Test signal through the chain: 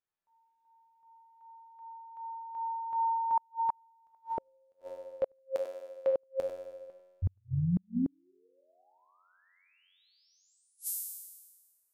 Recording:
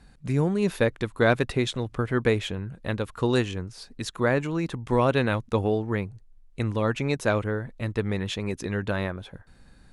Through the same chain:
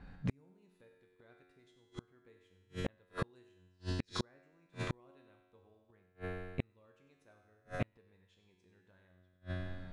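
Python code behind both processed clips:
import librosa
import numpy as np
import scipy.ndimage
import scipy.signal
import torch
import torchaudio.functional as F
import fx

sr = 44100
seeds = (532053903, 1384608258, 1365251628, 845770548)

p1 = fx.env_lowpass(x, sr, base_hz=2200.0, full_db=-22.5)
p2 = fx.rider(p1, sr, range_db=4, speed_s=0.5)
p3 = p1 + F.gain(torch.from_numpy(p2), 2.0).numpy()
p4 = fx.comb_fb(p3, sr, f0_hz=91.0, decay_s=1.4, harmonics='all', damping=0.0, mix_pct=90)
p5 = p4 + 10.0 ** (-11.0 / 20.0) * np.pad(p4, (int(96 * sr / 1000.0), 0))[:len(p4)]
p6 = fx.gate_flip(p5, sr, shuts_db=-30.0, range_db=-42)
y = F.gain(torch.from_numpy(p6), 9.0).numpy()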